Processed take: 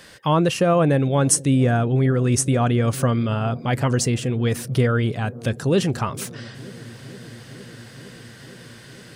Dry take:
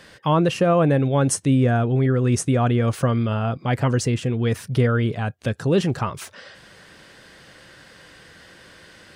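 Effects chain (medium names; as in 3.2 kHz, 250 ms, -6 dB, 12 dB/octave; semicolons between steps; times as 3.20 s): treble shelf 5.7 kHz +9 dB; feedback echo behind a low-pass 461 ms, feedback 84%, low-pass 440 Hz, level -19 dB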